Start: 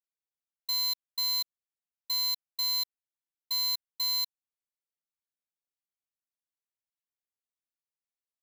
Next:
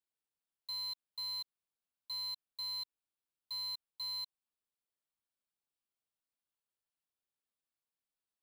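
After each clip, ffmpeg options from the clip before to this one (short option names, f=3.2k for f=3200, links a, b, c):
-filter_complex "[0:a]acrossover=split=8200[a][b];[b]acompressor=threshold=-49dB:ratio=4:attack=1:release=60[c];[a][c]amix=inputs=2:normalize=0,equalizer=f=2k:t=o:w=0.33:g=-7,equalizer=f=6.3k:t=o:w=0.33:g=-12,equalizer=f=16k:t=o:w=0.33:g=-11,alimiter=level_in=14dB:limit=-24dB:level=0:latency=1,volume=-14dB,volume=1dB"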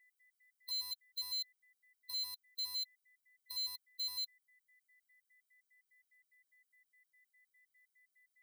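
-af "aeval=exprs='val(0)+0.000501*sin(2*PI*2000*n/s)':c=same,crystalizer=i=5:c=0,afftfilt=real='re*gt(sin(2*PI*4.9*pts/sr)*(1-2*mod(floor(b*sr/1024/410),2)),0)':imag='im*gt(sin(2*PI*4.9*pts/sr)*(1-2*mod(floor(b*sr/1024/410),2)),0)':win_size=1024:overlap=0.75,volume=-6dB"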